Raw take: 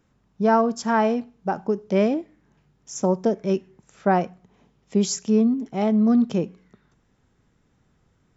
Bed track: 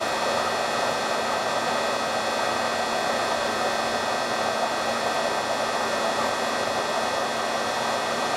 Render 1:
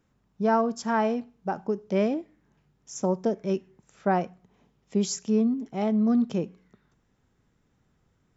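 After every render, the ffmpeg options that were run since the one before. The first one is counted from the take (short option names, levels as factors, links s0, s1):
-af "volume=0.596"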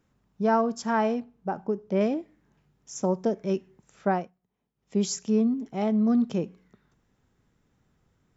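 -filter_complex "[0:a]asettb=1/sr,asplit=3[s0][s1][s2];[s0]atrim=end=1.204[s3];[s1]atrim=start=1.2:end=2.01,asetpts=PTS-STARTPTS,afade=t=in:d=0.004:c=qsin,afade=t=out:st=0.806:d=0.004:c=qsin,highshelf=f=2400:g=-8.5[s4];[s2]atrim=start=2.006[s5];[s3][s4]acrossfade=d=0.004:c1=hsin:c2=qsin[s6];[s6][s5]acrossfade=d=0.004:c1=qsin:c2=hsin,asplit=3[s7][s8][s9];[s7]atrim=end=4.32,asetpts=PTS-STARTPTS,afade=t=out:st=4.08:d=0.24:silence=0.125893[s10];[s8]atrim=start=4.32:end=4.75,asetpts=PTS-STARTPTS,volume=0.126[s11];[s9]atrim=start=4.75,asetpts=PTS-STARTPTS,afade=t=in:d=0.24:silence=0.125893[s12];[s10][s11][s12]concat=n=3:v=0:a=1"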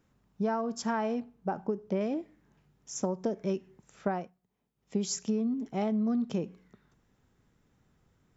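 -af "acompressor=threshold=0.0501:ratio=12"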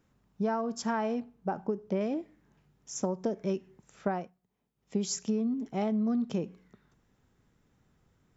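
-af anull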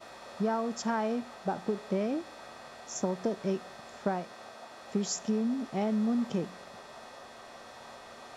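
-filter_complex "[1:a]volume=0.0708[s0];[0:a][s0]amix=inputs=2:normalize=0"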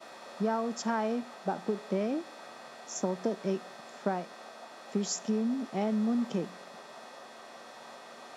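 -af "highpass=f=160:w=0.5412,highpass=f=160:w=1.3066"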